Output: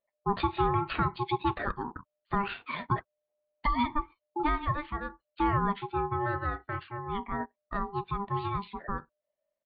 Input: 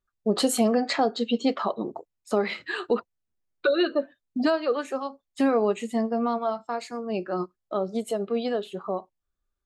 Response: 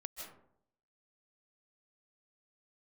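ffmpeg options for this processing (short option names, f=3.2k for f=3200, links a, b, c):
-af "aresample=8000,aresample=44100,aeval=exprs='val(0)*sin(2*PI*600*n/s)':c=same,volume=-2dB"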